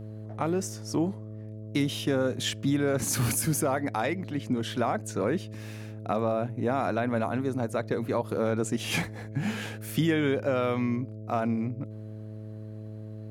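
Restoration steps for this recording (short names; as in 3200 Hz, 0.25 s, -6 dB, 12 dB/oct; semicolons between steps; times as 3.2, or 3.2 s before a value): de-hum 107.8 Hz, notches 6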